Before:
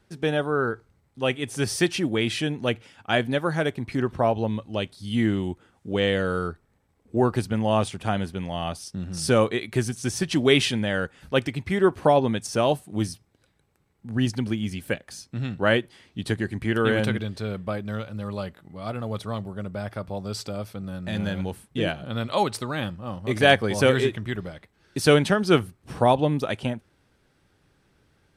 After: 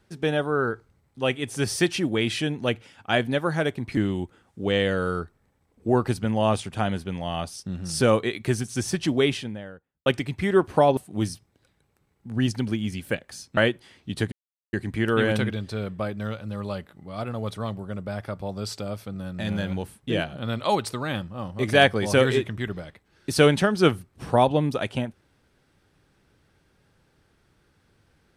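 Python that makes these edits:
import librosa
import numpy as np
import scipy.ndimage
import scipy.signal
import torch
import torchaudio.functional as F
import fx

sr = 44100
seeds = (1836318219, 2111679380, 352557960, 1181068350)

y = fx.studio_fade_out(x, sr, start_s=10.1, length_s=1.24)
y = fx.edit(y, sr, fx.cut(start_s=3.97, length_s=1.28),
    fx.cut(start_s=12.25, length_s=0.51),
    fx.cut(start_s=15.36, length_s=0.3),
    fx.insert_silence(at_s=16.41, length_s=0.41), tone=tone)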